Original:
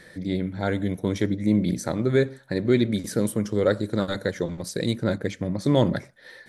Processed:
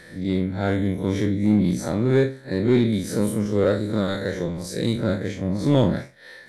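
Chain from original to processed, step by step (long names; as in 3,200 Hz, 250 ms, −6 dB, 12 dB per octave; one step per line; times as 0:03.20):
spectrum smeared in time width 88 ms
in parallel at −3 dB: gain into a clipping stage and back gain 19 dB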